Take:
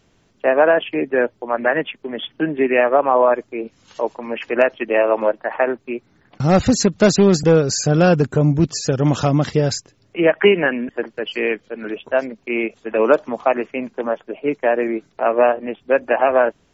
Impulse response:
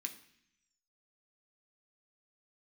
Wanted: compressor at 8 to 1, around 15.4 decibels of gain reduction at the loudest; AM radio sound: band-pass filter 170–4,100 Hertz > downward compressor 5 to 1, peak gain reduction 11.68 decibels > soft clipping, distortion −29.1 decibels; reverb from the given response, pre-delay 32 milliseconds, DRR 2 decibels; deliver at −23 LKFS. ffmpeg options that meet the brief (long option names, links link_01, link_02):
-filter_complex "[0:a]acompressor=threshold=-25dB:ratio=8,asplit=2[link_01][link_02];[1:a]atrim=start_sample=2205,adelay=32[link_03];[link_02][link_03]afir=irnorm=-1:irlink=0,volume=0.5dB[link_04];[link_01][link_04]amix=inputs=2:normalize=0,highpass=170,lowpass=4100,acompressor=threshold=-34dB:ratio=5,asoftclip=threshold=-21dB,volume=15dB"